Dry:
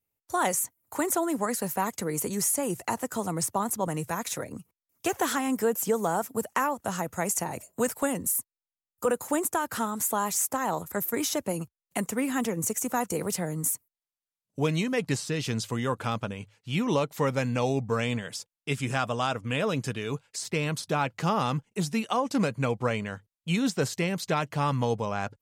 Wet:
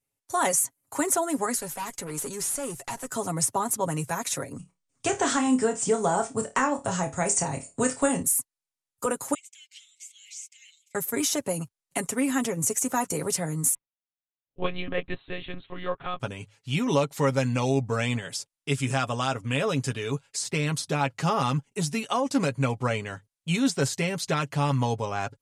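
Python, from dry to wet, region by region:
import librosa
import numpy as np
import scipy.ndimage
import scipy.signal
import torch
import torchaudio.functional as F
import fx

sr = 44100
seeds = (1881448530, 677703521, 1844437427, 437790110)

y = fx.chain(x, sr, fx.low_shelf(hz=210.0, db=-6.0),
    fx.tube_stage(drive_db=30.0, bias=0.35), at=(1.58, 3.1))
y = fx.chain(y, sr, fx.brickwall_lowpass(high_hz=9500.0),
    fx.low_shelf(hz=110.0, db=11.5),
    fx.room_flutter(wall_m=4.7, rt60_s=0.21), at=(4.57, 8.23))
y = fx.chain(y, sr, fx.cheby_ripple_highpass(hz=2100.0, ripple_db=6),
    fx.air_absorb(metres=180.0), at=(9.34, 10.95))
y = fx.chain(y, sr, fx.low_shelf(hz=150.0, db=-9.5),
    fx.lpc_monotone(seeds[0], pitch_hz=180.0, order=10),
    fx.upward_expand(threshold_db=-44.0, expansion=1.5), at=(13.74, 16.2))
y = scipy.signal.sosfilt(scipy.signal.butter(4, 11000.0, 'lowpass', fs=sr, output='sos'), y)
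y = fx.high_shelf(y, sr, hz=6800.0, db=7.0)
y = y + 0.54 * np.pad(y, (int(7.3 * sr / 1000.0), 0))[:len(y)]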